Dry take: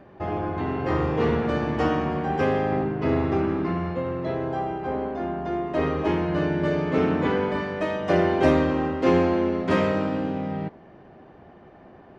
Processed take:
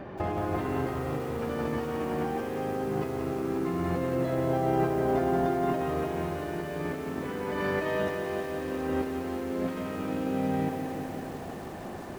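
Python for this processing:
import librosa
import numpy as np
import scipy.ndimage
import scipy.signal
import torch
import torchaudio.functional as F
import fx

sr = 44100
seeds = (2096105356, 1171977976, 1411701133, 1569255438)

y = fx.over_compress(x, sr, threshold_db=-33.0, ratio=-1.0)
y = fx.echo_crushed(y, sr, ms=176, feedback_pct=80, bits=8, wet_db=-6.5)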